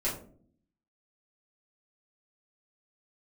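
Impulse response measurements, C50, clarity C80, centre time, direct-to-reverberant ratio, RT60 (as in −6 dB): 7.0 dB, 11.0 dB, 30 ms, −8.0 dB, 0.50 s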